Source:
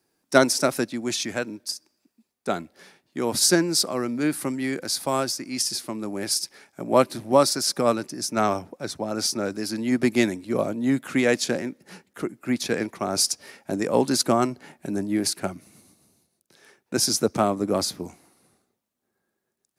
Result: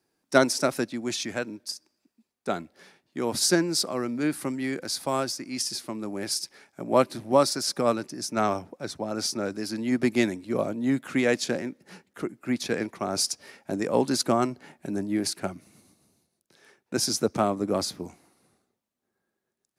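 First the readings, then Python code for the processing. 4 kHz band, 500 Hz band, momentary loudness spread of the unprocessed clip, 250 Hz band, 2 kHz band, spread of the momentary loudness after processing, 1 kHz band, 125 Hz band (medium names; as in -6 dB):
-3.5 dB, -2.5 dB, 12 LU, -2.5 dB, -2.5 dB, 12 LU, -2.5 dB, -2.5 dB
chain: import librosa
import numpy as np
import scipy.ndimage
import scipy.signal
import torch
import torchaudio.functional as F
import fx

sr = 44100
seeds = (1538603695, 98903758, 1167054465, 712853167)

y = fx.high_shelf(x, sr, hz=8700.0, db=-5.5)
y = F.gain(torch.from_numpy(y), -2.5).numpy()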